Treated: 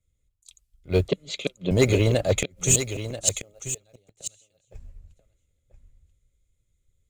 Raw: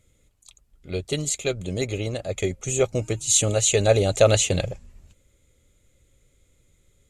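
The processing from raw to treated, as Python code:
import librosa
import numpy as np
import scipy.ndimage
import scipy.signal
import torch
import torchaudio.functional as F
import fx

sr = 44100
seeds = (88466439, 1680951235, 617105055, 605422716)

p1 = fx.peak_eq(x, sr, hz=560.0, db=13.0, octaves=2.1, at=(3.17, 3.78))
p2 = fx.gate_flip(p1, sr, shuts_db=-14.0, range_db=-41)
p3 = 10.0 ** (-19.5 / 20.0) * np.tanh(p2 / 10.0 ** (-19.5 / 20.0))
p4 = fx.quant_float(p3, sr, bits=4)
p5 = fx.cabinet(p4, sr, low_hz=160.0, low_slope=12, high_hz=4300.0, hz=(190.0, 530.0, 840.0, 1700.0, 3500.0), db=(6, 4, -5, -4, 4), at=(1.08, 1.71))
p6 = p5 + fx.echo_single(p5, sr, ms=986, db=-7.0, dry=0)
p7 = fx.band_widen(p6, sr, depth_pct=70)
y = p7 * librosa.db_to_amplitude(5.5)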